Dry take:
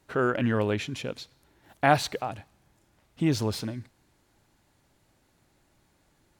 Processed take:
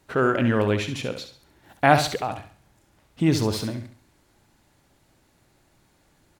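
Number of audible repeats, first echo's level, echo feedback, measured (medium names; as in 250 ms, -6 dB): 3, -9.0 dB, 34%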